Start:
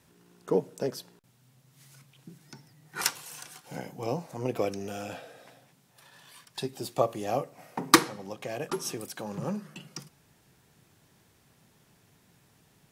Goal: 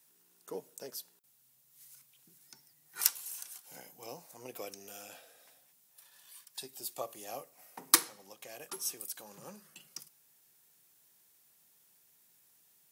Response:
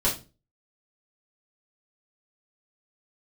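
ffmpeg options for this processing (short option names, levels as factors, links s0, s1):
-af "aemphasis=mode=production:type=riaa,volume=0.237"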